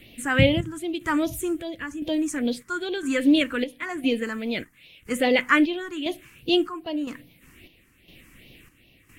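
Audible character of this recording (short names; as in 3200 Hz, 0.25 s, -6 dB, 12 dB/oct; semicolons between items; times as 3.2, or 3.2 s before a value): chopped level 0.99 Hz, depth 60%, duty 60%; phasing stages 4, 2.5 Hz, lowest notch 600–1400 Hz; Vorbis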